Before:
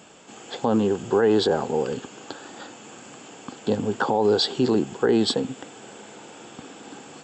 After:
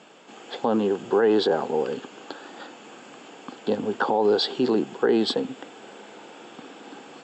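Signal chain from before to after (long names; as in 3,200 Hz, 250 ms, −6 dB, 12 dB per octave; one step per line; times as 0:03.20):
bit-depth reduction 12 bits, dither triangular
band-pass filter 220–4,600 Hz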